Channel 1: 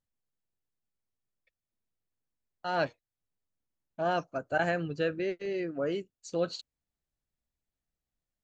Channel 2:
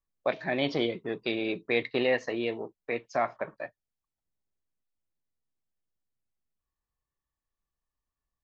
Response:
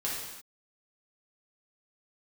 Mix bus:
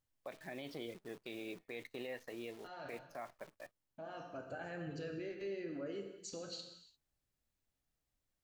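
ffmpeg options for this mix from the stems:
-filter_complex "[0:a]acompressor=threshold=0.0158:ratio=6,alimiter=level_in=5.31:limit=0.0631:level=0:latency=1:release=43,volume=0.188,volume=0.708,asplit=2[s0][s1];[s1]volume=0.668[s2];[1:a]adynamicequalizer=threshold=0.00794:dfrequency=980:dqfactor=1.1:tfrequency=980:tqfactor=1.1:attack=5:release=100:ratio=0.375:range=1.5:mode=cutabove:tftype=bell,acrusher=bits=8:dc=4:mix=0:aa=0.000001,volume=0.188,asplit=2[s3][s4];[s4]apad=whole_len=372006[s5];[s0][s5]sidechaincompress=threshold=0.00251:ratio=8:attack=16:release=1070[s6];[2:a]atrim=start_sample=2205[s7];[s2][s7]afir=irnorm=-1:irlink=0[s8];[s6][s3][s8]amix=inputs=3:normalize=0,alimiter=level_in=3.35:limit=0.0631:level=0:latency=1:release=49,volume=0.299"

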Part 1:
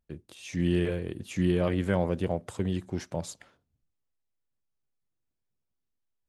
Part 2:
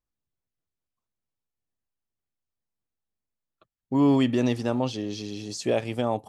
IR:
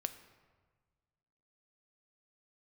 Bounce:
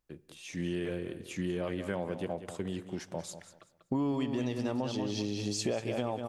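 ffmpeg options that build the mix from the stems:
-filter_complex "[0:a]highpass=f=230:p=1,volume=0.531,asplit=3[s0][s1][s2];[s1]volume=0.447[s3];[s2]volume=0.316[s4];[1:a]acontrast=35,volume=0.596,asplit=3[s5][s6][s7];[s6]volume=0.398[s8];[s7]volume=0.562[s9];[2:a]atrim=start_sample=2205[s10];[s3][s8]amix=inputs=2:normalize=0[s11];[s11][s10]afir=irnorm=-1:irlink=0[s12];[s4][s9]amix=inputs=2:normalize=0,aecho=0:1:191|382|573|764:1|0.24|0.0576|0.0138[s13];[s0][s5][s12][s13]amix=inputs=4:normalize=0,acompressor=threshold=0.0355:ratio=10"

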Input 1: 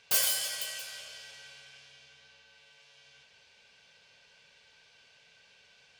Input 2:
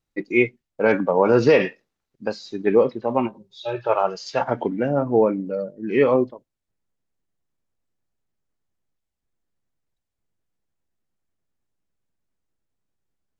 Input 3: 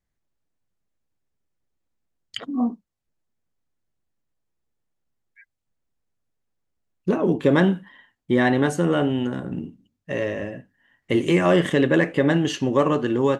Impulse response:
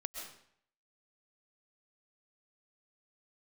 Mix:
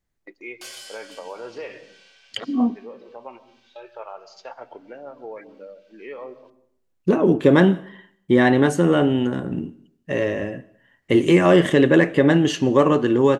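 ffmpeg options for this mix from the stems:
-filter_complex "[0:a]lowpass=7000,agate=range=0.0224:threshold=0.00158:ratio=3:detection=peak,adelay=500,volume=0.891[s0];[1:a]agate=range=0.251:threshold=0.0178:ratio=16:detection=peak,adelay=100,volume=0.355,asplit=2[s1][s2];[s2]volume=0.133[s3];[2:a]equalizer=f=360:t=o:w=0.77:g=2.5,volume=1.19,asplit=3[s4][s5][s6];[s5]volume=0.133[s7];[s6]apad=whole_len=595178[s8];[s1][s8]sidechaincompress=threshold=0.02:ratio=8:attack=16:release=457[s9];[s0][s9]amix=inputs=2:normalize=0,highpass=400,acompressor=threshold=0.00891:ratio=2,volume=1[s10];[3:a]atrim=start_sample=2205[s11];[s3][s7]amix=inputs=2:normalize=0[s12];[s12][s11]afir=irnorm=-1:irlink=0[s13];[s4][s10][s13]amix=inputs=3:normalize=0"

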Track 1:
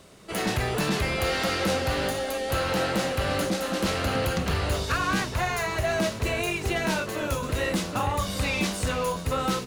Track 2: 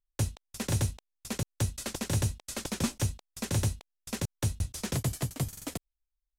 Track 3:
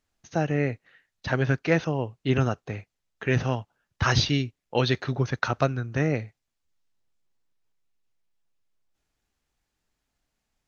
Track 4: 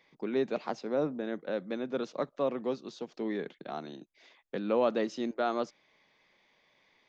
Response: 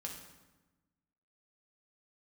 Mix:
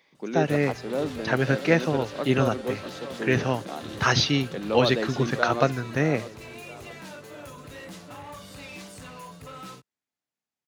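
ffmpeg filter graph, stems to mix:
-filter_complex "[0:a]aecho=1:1:6.9:0.58,asoftclip=type=hard:threshold=0.0631,adelay=150,volume=0.168,asplit=2[s0][s1];[s1]volume=0.335[s2];[1:a]lowpass=f=3600:t=q:w=4.9,adelay=300,volume=0.15[s3];[2:a]agate=range=0.2:threshold=0.00355:ratio=16:detection=peak,highpass=150,volume=1.33[s4];[3:a]highshelf=f=5300:g=6.5,volume=1.19,asplit=2[s5][s6];[s6]volume=0.282[s7];[4:a]atrim=start_sample=2205[s8];[s2][s8]afir=irnorm=-1:irlink=0[s9];[s7]aecho=0:1:646|1292|1938|2584|3230|3876:1|0.43|0.185|0.0795|0.0342|0.0147[s10];[s0][s3][s4][s5][s9][s10]amix=inputs=6:normalize=0,highpass=58"

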